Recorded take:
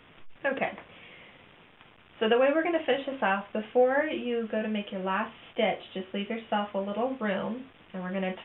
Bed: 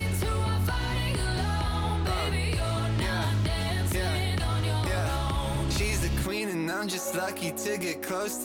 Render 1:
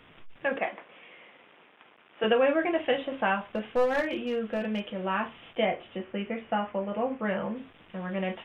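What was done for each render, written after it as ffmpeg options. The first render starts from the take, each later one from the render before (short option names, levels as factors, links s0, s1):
-filter_complex "[0:a]asettb=1/sr,asplit=3[s0][s1][s2];[s0]atrim=end=0.564[s3];[s1]atrim=start=0.56:end=2.24,asetpts=PTS-STARTPTS,afade=t=in:d=0.004:c=qsin,afade=t=out:st=1.676:d=0.004:c=qsin,highpass=300,lowpass=3100[s4];[s2]atrim=start=2.236[s5];[s3][s4]acrossfade=d=0.004:c1=hsin:c2=qsin[s6];[s6][s5]acrossfade=d=0.004:c1=qsin:c2=hsin,asettb=1/sr,asplit=3[s7][s8][s9];[s7]atrim=end=3.384[s10];[s8]atrim=start=3.38:end=4.94,asetpts=PTS-STARTPTS,afade=t=in:d=0.004:c=qsin,afade=t=out:st=1.556:d=0.004:c=qsin,aeval=exprs='clip(val(0),-1,0.0596)':c=same[s11];[s9]atrim=start=4.936[s12];[s10][s11]acrossfade=d=0.004:c1=hsin:c2=qsin[s13];[s13][s12]acrossfade=d=0.004:c1=qsin:c2=hsin,asettb=1/sr,asplit=3[s14][s15][s16];[s14]atrim=end=5.654[s17];[s15]atrim=start=5.65:end=7.56,asetpts=PTS-STARTPTS,afade=t=in:d=0.004:c=qsin,afade=t=out:st=1.906:d=0.004:c=qsin,lowpass=f=2700:w=0.5412,lowpass=f=2700:w=1.3066[s18];[s16]atrim=start=7.556[s19];[s17][s18]acrossfade=d=0.004:c1=hsin:c2=qsin[s20];[s20][s19]acrossfade=d=0.004:c1=qsin:c2=hsin"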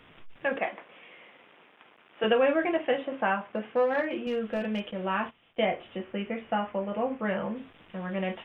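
-filter_complex "[0:a]asettb=1/sr,asplit=3[s0][s1][s2];[s0]atrim=end=2.774[s3];[s1]atrim=start=2.77:end=4.27,asetpts=PTS-STARTPTS,afade=t=in:d=0.004:c=qsin,afade=t=out:st=1.496:d=0.004:c=qsin,highpass=150,lowpass=2500[s4];[s2]atrim=start=4.266[s5];[s3][s4]acrossfade=d=0.004:c1=hsin:c2=qsin[s6];[s6][s5]acrossfade=d=0.004:c1=qsin:c2=hsin,asettb=1/sr,asplit=3[s7][s8][s9];[s7]atrim=end=4.914[s10];[s8]atrim=start=4.91:end=5.63,asetpts=PTS-STARTPTS,afade=t=in:d=0.004:c=qsin,afade=t=out:st=0.716:d=0.004:c=qsin,agate=range=0.2:threshold=0.00708:ratio=16:release=100:detection=peak[s11];[s9]atrim=start=5.626[s12];[s10][s11]acrossfade=d=0.004:c1=hsin:c2=qsin[s13];[s13][s12]acrossfade=d=0.004:c1=qsin:c2=hsin"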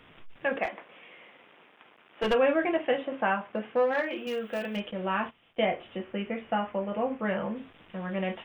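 -filter_complex "[0:a]asplit=3[s0][s1][s2];[s0]afade=t=out:st=0.63:d=0.02[s3];[s1]aeval=exprs='clip(val(0),-1,0.0531)':c=same,afade=t=in:st=0.63:d=0.02,afade=t=out:st=2.33:d=0.02[s4];[s2]afade=t=in:st=2.33:d=0.02[s5];[s3][s4][s5]amix=inputs=3:normalize=0,asplit=3[s6][s7][s8];[s6]afade=t=out:st=3.91:d=0.02[s9];[s7]aemphasis=mode=production:type=bsi,afade=t=in:st=3.91:d=0.02,afade=t=out:st=4.75:d=0.02[s10];[s8]afade=t=in:st=4.75:d=0.02[s11];[s9][s10][s11]amix=inputs=3:normalize=0"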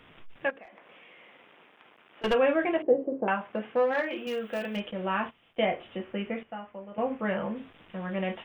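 -filter_complex "[0:a]asettb=1/sr,asplit=3[s0][s1][s2];[s0]atrim=end=0.504[s3];[s1]atrim=start=0.5:end=2.24,asetpts=PTS-STARTPTS,afade=t=in:d=0.004:c=qsin,afade=t=out:st=1.736:d=0.004:c=qsin,acompressor=threshold=0.00355:ratio=4:attack=3.2:release=140:knee=1:detection=peak[s4];[s2]atrim=start=2.236[s5];[s3][s4]acrossfade=d=0.004:c1=hsin:c2=qsin[s6];[s6][s5]acrossfade=d=0.004:c1=qsin:c2=hsin,asettb=1/sr,asplit=3[s7][s8][s9];[s7]atrim=end=2.824[s10];[s8]atrim=start=2.82:end=3.28,asetpts=PTS-STARTPTS,afade=t=in:d=0.004:c=qsin,afade=t=out:st=0.456:d=0.004:c=qsin,lowpass=f=420:t=q:w=3[s11];[s9]atrim=start=3.276[s12];[s10][s11]acrossfade=d=0.004:c1=hsin:c2=qsin[s13];[s13][s12]acrossfade=d=0.004:c1=qsin:c2=hsin,asplit=3[s14][s15][s16];[s14]atrim=end=6.432[s17];[s15]atrim=start=6.428:end=6.982,asetpts=PTS-STARTPTS,volume=0.282[s18];[s16]atrim=start=6.978[s19];[s17][s18]acrossfade=d=0.004:c1=hsin:c2=hsin[s20];[s20][s19]acrossfade=d=0.004:c1=hsin:c2=hsin"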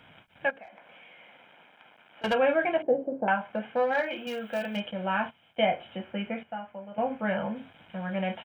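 -af "highpass=87,aecho=1:1:1.3:0.55"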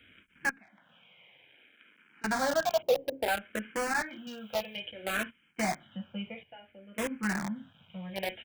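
-filter_complex "[0:a]acrossover=split=450|1200[s0][s1][s2];[s1]acrusher=bits=4:mix=0:aa=0.000001[s3];[s0][s3][s2]amix=inputs=3:normalize=0,asplit=2[s4][s5];[s5]afreqshift=-0.59[s6];[s4][s6]amix=inputs=2:normalize=1"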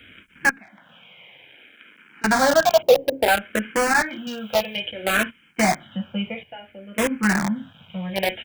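-af "volume=3.76"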